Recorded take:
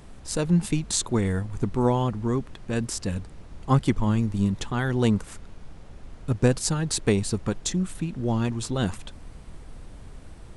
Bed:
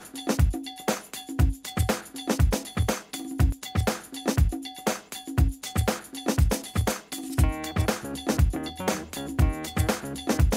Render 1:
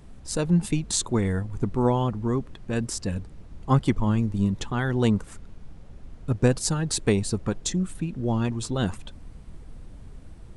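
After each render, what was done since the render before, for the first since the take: denoiser 6 dB, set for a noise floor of -45 dBFS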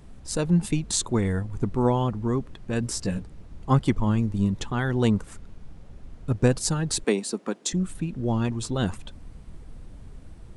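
2.81–3.22 doubler 16 ms -5 dB; 7.04–7.73 steep high-pass 210 Hz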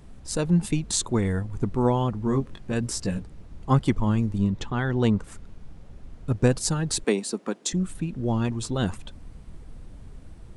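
2.24–2.73 doubler 22 ms -5 dB; 4.38–5.24 air absorption 64 m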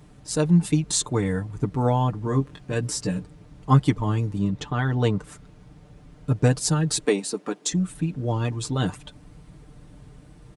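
HPF 51 Hz 12 dB/oct; comb 6.7 ms, depth 69%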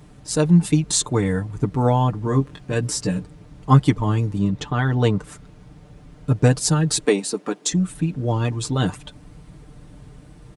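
gain +3.5 dB

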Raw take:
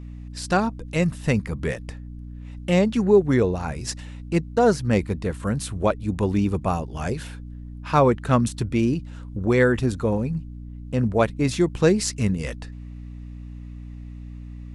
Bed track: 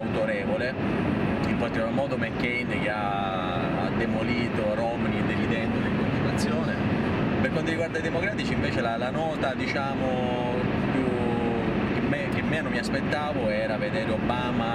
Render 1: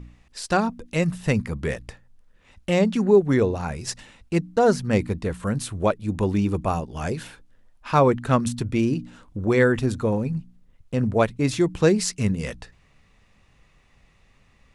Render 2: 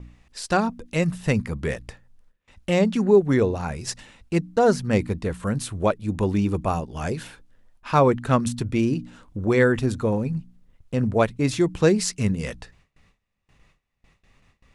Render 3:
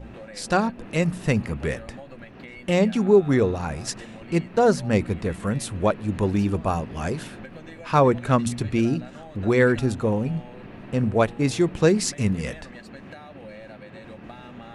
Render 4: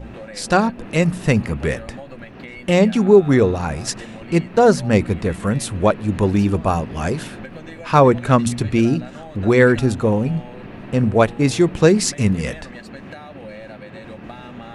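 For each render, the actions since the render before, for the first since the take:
de-hum 60 Hz, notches 5
gate with hold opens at -47 dBFS
add bed track -15.5 dB
gain +5.5 dB; limiter -1 dBFS, peak gain reduction 1 dB

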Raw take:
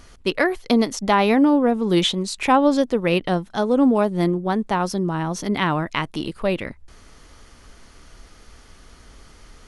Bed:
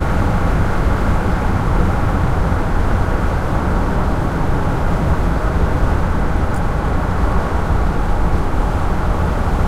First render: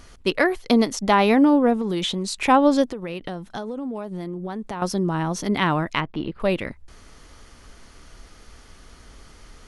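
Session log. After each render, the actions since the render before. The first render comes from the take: 1.81–2.35 compressor, threshold -21 dBFS; 2.89–4.82 compressor 16:1, threshold -26 dBFS; 6–6.4 air absorption 360 m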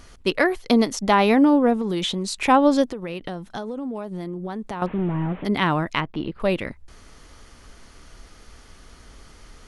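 4.86–5.45 delta modulation 16 kbps, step -40 dBFS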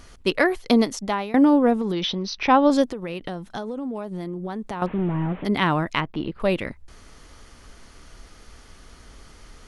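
0.78–1.34 fade out, to -21.5 dB; 1.92–2.7 Chebyshev low-pass 6000 Hz, order 8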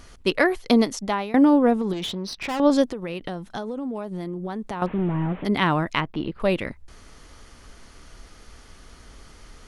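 1.93–2.6 tube stage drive 25 dB, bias 0.5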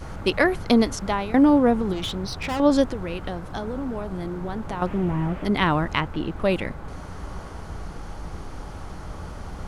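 add bed -19.5 dB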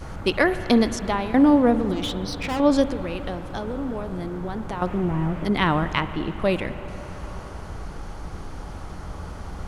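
spring tank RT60 3.7 s, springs 50/54 ms, chirp 20 ms, DRR 12 dB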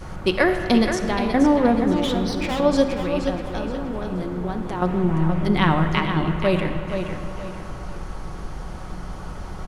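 feedback echo 0.475 s, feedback 33%, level -8 dB; shoebox room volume 2800 m³, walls mixed, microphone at 1 m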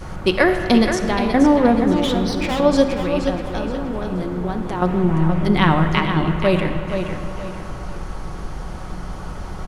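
gain +3 dB

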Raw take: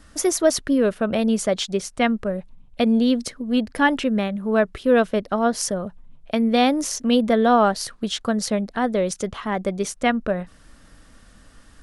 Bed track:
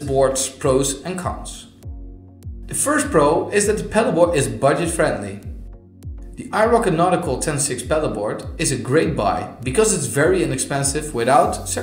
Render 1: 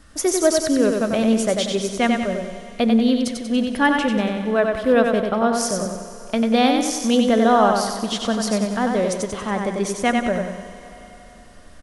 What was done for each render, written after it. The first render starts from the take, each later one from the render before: feedback echo 94 ms, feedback 47%, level -4.5 dB; Schroeder reverb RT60 4 s, combs from 31 ms, DRR 12 dB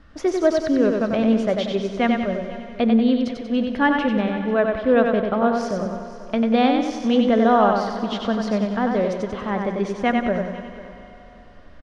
air absorption 240 m; echo 0.494 s -17.5 dB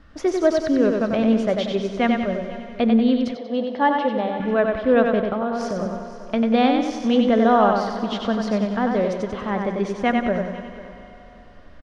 3.35–4.4 speaker cabinet 280–5100 Hz, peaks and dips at 340 Hz -5 dB, 520 Hz +4 dB, 790 Hz +6 dB, 1500 Hz -8 dB, 2500 Hz -9 dB; 5.32–5.79 compressor 4:1, threshold -20 dBFS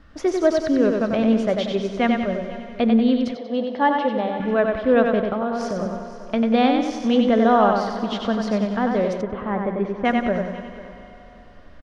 9.21–10.05 LPF 1900 Hz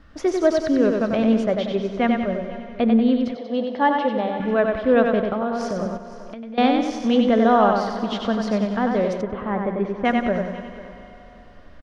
1.44–3.38 LPF 2900 Hz 6 dB/oct; 5.97–6.58 compressor 10:1, threshold -32 dBFS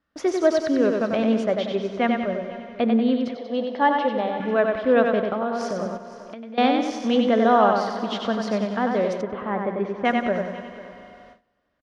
HPF 240 Hz 6 dB/oct; gate with hold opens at -37 dBFS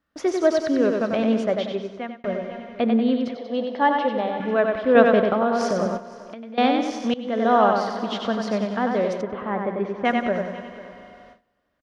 1.6–2.24 fade out; 4.95–6 gain +4.5 dB; 7.14–7.56 fade in, from -22 dB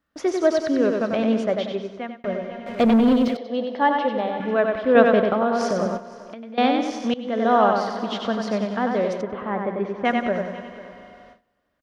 2.66–3.37 sample leveller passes 2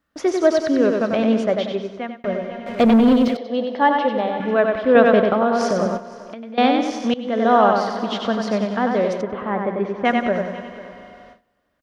gain +3 dB; limiter -3 dBFS, peak gain reduction 2.5 dB

